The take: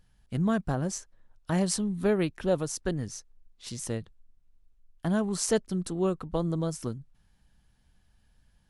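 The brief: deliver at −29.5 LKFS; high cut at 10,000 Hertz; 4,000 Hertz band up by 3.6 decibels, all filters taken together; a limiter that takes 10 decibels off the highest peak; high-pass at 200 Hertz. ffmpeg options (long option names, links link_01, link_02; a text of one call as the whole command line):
ffmpeg -i in.wav -af "highpass=200,lowpass=10000,equalizer=frequency=4000:width_type=o:gain=5,volume=4dB,alimiter=limit=-17.5dB:level=0:latency=1" out.wav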